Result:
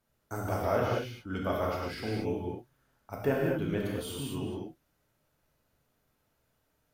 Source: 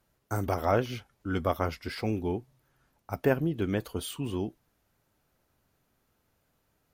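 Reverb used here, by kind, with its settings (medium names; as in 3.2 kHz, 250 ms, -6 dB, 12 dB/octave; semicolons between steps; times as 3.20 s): gated-style reverb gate 260 ms flat, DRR -3.5 dB; trim -6.5 dB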